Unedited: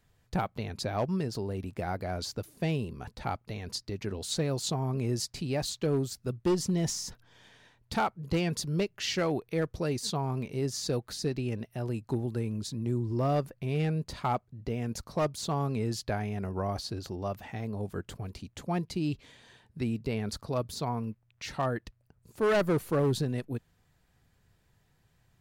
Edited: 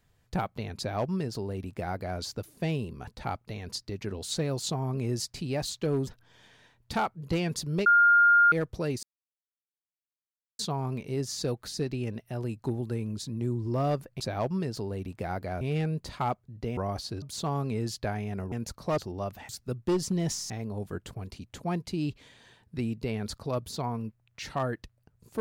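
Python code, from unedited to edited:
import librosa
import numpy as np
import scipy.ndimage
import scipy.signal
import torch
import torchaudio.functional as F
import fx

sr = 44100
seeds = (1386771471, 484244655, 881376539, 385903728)

y = fx.edit(x, sr, fx.duplicate(start_s=0.78, length_s=1.41, to_s=13.65),
    fx.move(start_s=6.07, length_s=1.01, to_s=17.53),
    fx.bleep(start_s=8.87, length_s=0.66, hz=1410.0, db=-16.0),
    fx.insert_silence(at_s=10.04, length_s=1.56),
    fx.swap(start_s=14.81, length_s=0.46, other_s=16.57, other_length_s=0.45), tone=tone)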